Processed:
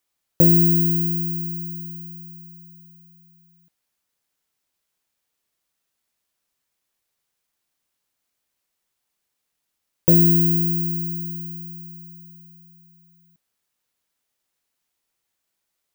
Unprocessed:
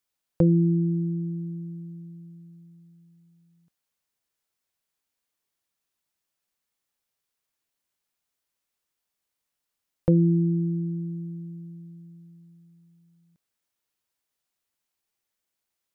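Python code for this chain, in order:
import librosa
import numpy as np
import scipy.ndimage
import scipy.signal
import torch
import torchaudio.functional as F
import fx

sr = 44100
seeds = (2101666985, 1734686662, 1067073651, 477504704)

y = (np.kron(x[::2], np.eye(2)[0]) * 2)[:len(x)]
y = F.gain(torch.from_numpy(y), 2.0).numpy()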